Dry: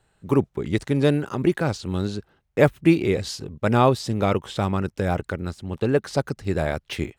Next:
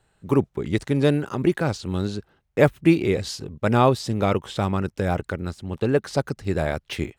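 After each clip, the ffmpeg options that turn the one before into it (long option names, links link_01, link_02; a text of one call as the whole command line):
ffmpeg -i in.wav -af anull out.wav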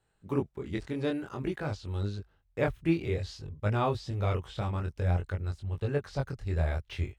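ffmpeg -i in.wav -filter_complex "[0:a]flanger=delay=19.5:depth=4.9:speed=0.53,acrossover=split=5600[link_01][link_02];[link_02]acompressor=threshold=-56dB:ratio=4:attack=1:release=60[link_03];[link_01][link_03]amix=inputs=2:normalize=0,asubboost=boost=8.5:cutoff=79,volume=-7dB" out.wav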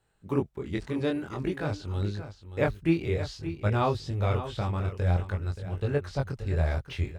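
ffmpeg -i in.wav -af "aecho=1:1:577:0.266,volume=2.5dB" out.wav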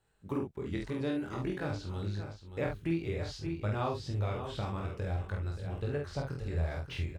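ffmpeg -i in.wav -filter_complex "[0:a]acompressor=threshold=-30dB:ratio=2.5,asplit=2[link_01][link_02];[link_02]adelay=48,volume=-4dB[link_03];[link_01][link_03]amix=inputs=2:normalize=0,volume=-3dB" out.wav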